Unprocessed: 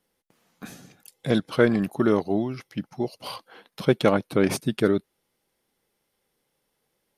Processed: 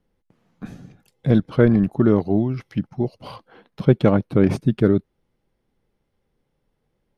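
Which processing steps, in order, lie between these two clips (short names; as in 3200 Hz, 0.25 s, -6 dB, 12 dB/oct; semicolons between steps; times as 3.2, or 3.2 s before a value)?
RIAA curve playback; 2.2–2.87 mismatched tape noise reduction encoder only; gain -1 dB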